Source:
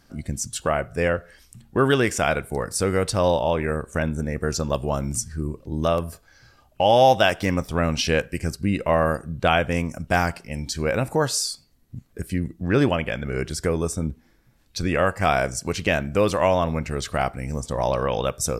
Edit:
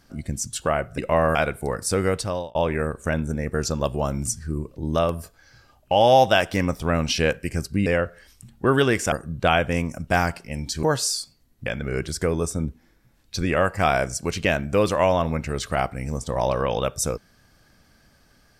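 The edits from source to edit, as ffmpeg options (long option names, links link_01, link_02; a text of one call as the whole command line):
ffmpeg -i in.wav -filter_complex "[0:a]asplit=8[link_01][link_02][link_03][link_04][link_05][link_06][link_07][link_08];[link_01]atrim=end=0.982[link_09];[link_02]atrim=start=8.748:end=9.122[link_10];[link_03]atrim=start=2.238:end=3.44,asetpts=PTS-STARTPTS,afade=type=out:start_time=0.732:duration=0.47[link_11];[link_04]atrim=start=3.44:end=8.752,asetpts=PTS-STARTPTS,afade=type=in:duration=0.004:curve=hsin[link_12];[link_05]atrim=start=0.978:end=2.242[link_13];[link_06]atrim=start=9.118:end=10.832[link_14];[link_07]atrim=start=11.138:end=11.972[link_15];[link_08]atrim=start=13.078[link_16];[link_09][link_10]acrossfade=duration=0.004:curve1=hsin:curve2=hsin[link_17];[link_11][link_12]concat=n=2:v=0:a=1[link_18];[link_17][link_18]acrossfade=duration=0.004:curve1=hsin:curve2=hsin[link_19];[link_19][link_13]acrossfade=duration=0.004:curve1=hsin:curve2=hsin[link_20];[link_20][link_14]acrossfade=duration=0.004:curve1=hsin:curve2=hsin[link_21];[link_21][link_15]acrossfade=duration=0.004:curve1=hsin:curve2=hsin[link_22];[link_22][link_16]acrossfade=duration=0.004:curve1=hsin:curve2=hsin" out.wav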